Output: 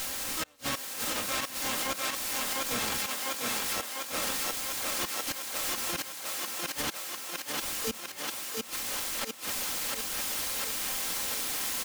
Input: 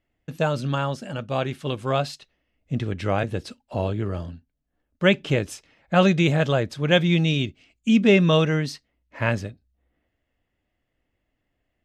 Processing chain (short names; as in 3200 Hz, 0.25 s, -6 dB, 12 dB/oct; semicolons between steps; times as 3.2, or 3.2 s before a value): spectral whitening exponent 0.3; bell 110 Hz -14.5 dB 1.7 oct; transient shaper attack -7 dB, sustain 0 dB; requantised 6-bit, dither triangular; harmoniser -12 st -4 dB, -3 st -5 dB, +12 st -1 dB; flipped gate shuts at -12 dBFS, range -37 dB; comb 3.8 ms, depth 39%; thinning echo 0.699 s, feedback 68%, high-pass 210 Hz, level -3.5 dB; limiter -18.5 dBFS, peak gain reduction 8 dB; gain -2.5 dB